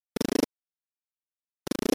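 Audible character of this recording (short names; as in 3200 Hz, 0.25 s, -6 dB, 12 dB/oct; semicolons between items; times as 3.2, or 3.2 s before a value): a buzz of ramps at a fixed pitch in blocks of 8 samples; chopped level 2 Hz, depth 60%, duty 50%; a quantiser's noise floor 6-bit, dither none; MP3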